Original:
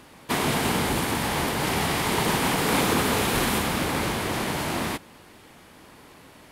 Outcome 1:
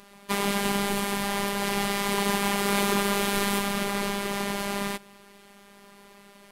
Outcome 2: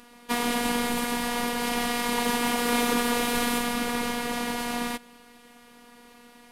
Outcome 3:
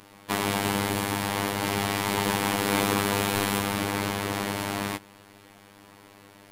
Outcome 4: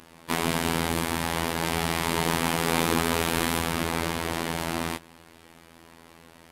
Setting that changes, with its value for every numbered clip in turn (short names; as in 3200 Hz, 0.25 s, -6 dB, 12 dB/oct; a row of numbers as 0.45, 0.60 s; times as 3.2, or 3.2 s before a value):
robotiser, frequency: 200, 240, 100, 83 Hz